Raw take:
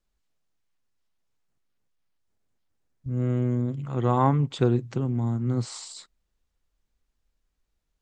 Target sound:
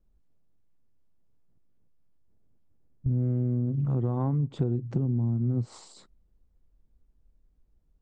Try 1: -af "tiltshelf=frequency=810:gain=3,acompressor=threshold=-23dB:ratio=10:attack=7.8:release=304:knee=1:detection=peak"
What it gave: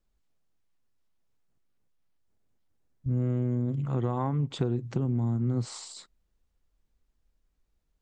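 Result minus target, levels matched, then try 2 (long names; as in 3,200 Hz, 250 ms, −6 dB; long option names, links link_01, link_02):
1,000 Hz band +6.5 dB
-af "tiltshelf=frequency=810:gain=12,acompressor=threshold=-23dB:ratio=10:attack=7.8:release=304:knee=1:detection=peak"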